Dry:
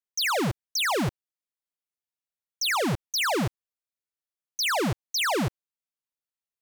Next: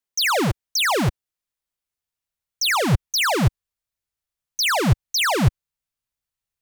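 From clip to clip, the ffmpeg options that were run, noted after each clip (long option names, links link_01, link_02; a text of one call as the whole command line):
ffmpeg -i in.wav -af "asubboost=boost=5.5:cutoff=120,volume=5.5dB" out.wav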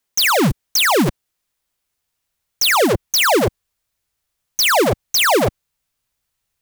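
ffmpeg -i in.wav -af "acontrast=76,aeval=exprs='0.168*(abs(mod(val(0)/0.168+3,4)-2)-1)':channel_layout=same,volume=5dB" out.wav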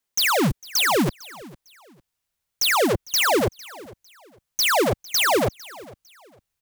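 ffmpeg -i in.wav -af "aecho=1:1:453|906:0.0891|0.0241,volume=-5dB" out.wav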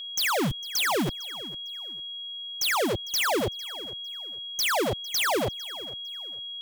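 ffmpeg -i in.wav -af "aeval=exprs='val(0)+0.0251*sin(2*PI*3300*n/s)':channel_layout=same,aeval=exprs='0.211*(cos(1*acos(clip(val(0)/0.211,-1,1)))-cos(1*PI/2))+0.0211*(cos(5*acos(clip(val(0)/0.211,-1,1)))-cos(5*PI/2))':channel_layout=same,volume=-6dB" out.wav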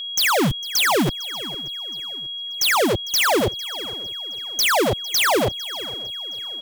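ffmpeg -i in.wav -af "aecho=1:1:585|1170|1755:0.0708|0.0354|0.0177,volume=7dB" out.wav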